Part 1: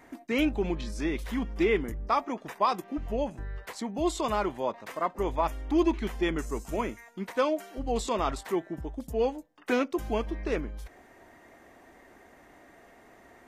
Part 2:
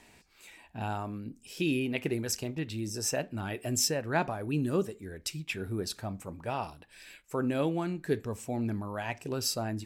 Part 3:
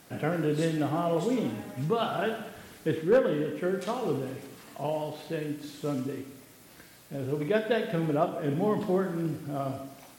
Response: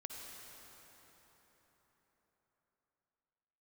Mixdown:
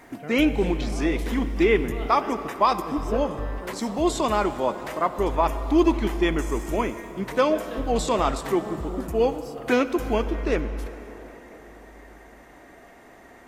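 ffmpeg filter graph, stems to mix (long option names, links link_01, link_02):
-filter_complex "[0:a]volume=3dB,asplit=2[link_01][link_02];[link_02]volume=-3.5dB[link_03];[1:a]acrusher=bits=8:mix=0:aa=0.000001,volume=-19dB[link_04];[2:a]volume=-10dB[link_05];[3:a]atrim=start_sample=2205[link_06];[link_03][link_06]afir=irnorm=-1:irlink=0[link_07];[link_01][link_04][link_05][link_07]amix=inputs=4:normalize=0"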